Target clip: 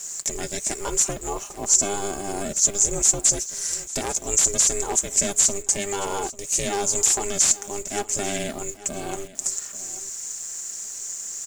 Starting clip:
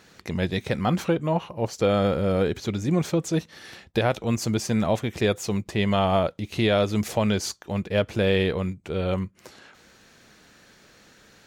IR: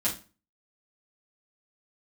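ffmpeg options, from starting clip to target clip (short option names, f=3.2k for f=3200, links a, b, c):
-filter_complex "[0:a]lowshelf=f=200:g=-5.5,aecho=1:1:5:0.49,asplit=2[a][b];[b]acompressor=threshold=-34dB:ratio=6,volume=0dB[c];[a][c]amix=inputs=2:normalize=0,aexciter=amount=14.7:drive=3.8:freq=5.6k,aeval=exprs='0.237*(abs(mod(val(0)/0.237+3,4)-2)-1)':c=same,aeval=exprs='val(0)*sin(2*PI*200*n/s)':c=same,lowpass=f=7.3k:t=q:w=6.3,acrusher=bits=6:mix=0:aa=0.000001,asplit=2[d][e];[e]aecho=0:1:842:0.141[f];[d][f]amix=inputs=2:normalize=0,volume=-4.5dB"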